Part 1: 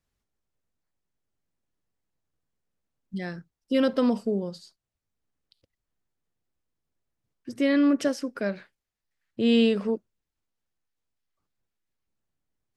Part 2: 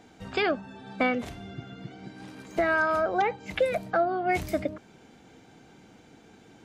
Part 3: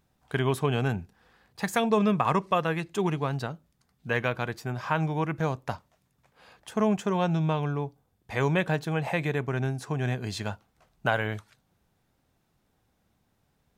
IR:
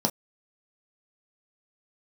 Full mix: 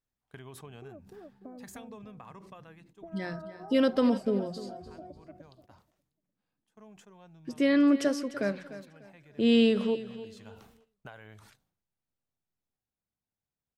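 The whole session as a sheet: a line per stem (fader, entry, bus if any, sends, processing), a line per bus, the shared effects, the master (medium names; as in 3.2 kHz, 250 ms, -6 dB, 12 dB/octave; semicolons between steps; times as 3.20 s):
-1.5 dB, 0.00 s, no bus, no send, echo send -14.5 dB, hum notches 60/120/180 Hz
-9.5 dB, 0.45 s, bus A, no send, echo send -9.5 dB, expander on every frequency bin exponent 1.5; Gaussian low-pass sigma 9.1 samples
-15.0 dB, 0.00 s, bus A, no send, no echo send, decay stretcher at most 77 dB/s; auto duck -14 dB, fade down 1.45 s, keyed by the first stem
bus A: 0.0 dB, treble shelf 5.1 kHz +3 dB; compression 6:1, threshold -44 dBFS, peak gain reduction 11.5 dB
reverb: none
echo: feedback delay 297 ms, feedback 31%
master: gate -59 dBFS, range -10 dB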